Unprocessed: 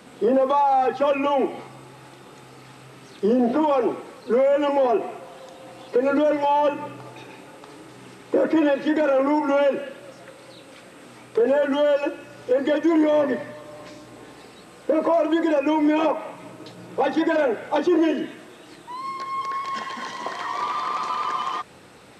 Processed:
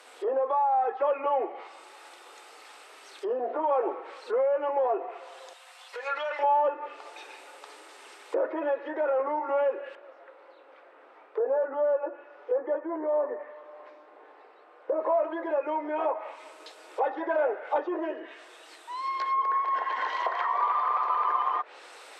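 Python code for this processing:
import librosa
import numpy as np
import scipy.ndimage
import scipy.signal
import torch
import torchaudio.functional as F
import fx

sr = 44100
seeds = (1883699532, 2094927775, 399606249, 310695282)

y = fx.highpass(x, sr, hz=1100.0, slope=12, at=(5.53, 6.39))
y = fx.lowpass(y, sr, hz=1300.0, slope=12, at=(9.95, 15.0))
y = fx.highpass(y, sr, hz=400.0, slope=12, at=(20.19, 21.08))
y = fx.rider(y, sr, range_db=5, speed_s=0.5)
y = fx.env_lowpass_down(y, sr, base_hz=1200.0, full_db=-21.5)
y = scipy.signal.sosfilt(scipy.signal.bessel(8, 660.0, 'highpass', norm='mag', fs=sr, output='sos'), y)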